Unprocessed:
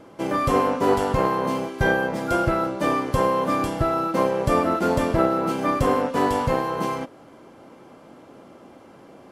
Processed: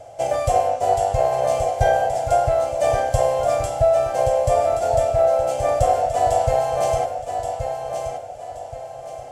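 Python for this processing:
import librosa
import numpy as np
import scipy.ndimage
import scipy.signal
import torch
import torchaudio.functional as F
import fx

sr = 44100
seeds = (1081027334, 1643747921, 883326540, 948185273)

p1 = fx.curve_eq(x, sr, hz=(120.0, 180.0, 340.0, 710.0, 1000.0, 1700.0, 2700.0, 4200.0, 7600.0, 12000.0), db=(0, -24, -22, 12, -16, -10, -6, -6, 6, -6))
p2 = fx.rider(p1, sr, range_db=5, speed_s=0.5)
p3 = p2 + fx.echo_feedback(p2, sr, ms=1126, feedback_pct=34, wet_db=-7, dry=0)
y = p3 * librosa.db_to_amplitude(3.0)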